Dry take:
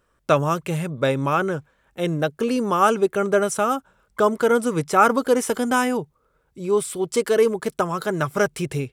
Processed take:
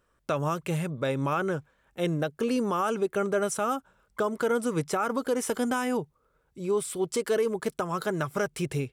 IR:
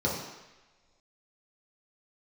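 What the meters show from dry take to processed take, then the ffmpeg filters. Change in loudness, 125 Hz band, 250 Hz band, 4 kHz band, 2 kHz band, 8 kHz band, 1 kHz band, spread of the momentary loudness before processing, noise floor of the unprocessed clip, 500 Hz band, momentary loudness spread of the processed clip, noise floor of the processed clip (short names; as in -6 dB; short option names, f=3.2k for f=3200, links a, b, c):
-7.5 dB, -5.0 dB, -6.0 dB, -6.5 dB, -8.0 dB, -5.5 dB, -9.0 dB, 9 LU, -67 dBFS, -7.5 dB, 5 LU, -71 dBFS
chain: -af "alimiter=limit=-14dB:level=0:latency=1:release=141,volume=-4dB"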